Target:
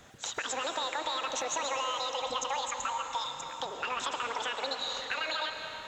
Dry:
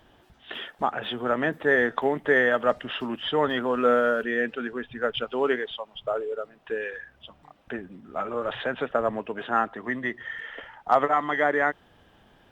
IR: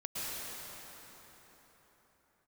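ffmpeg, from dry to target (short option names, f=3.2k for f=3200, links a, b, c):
-filter_complex "[0:a]alimiter=limit=-17dB:level=0:latency=1,acompressor=threshold=-33dB:ratio=6,asetrate=93933,aresample=44100,asplit=2[a][b];[1:a]atrim=start_sample=2205[c];[b][c]afir=irnorm=-1:irlink=0,volume=-6dB[d];[a][d]amix=inputs=2:normalize=0"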